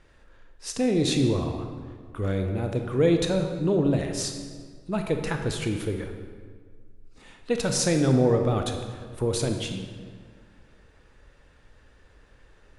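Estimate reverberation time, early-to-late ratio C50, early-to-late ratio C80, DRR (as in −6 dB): 1.8 s, 6.0 dB, 7.0 dB, 4.5 dB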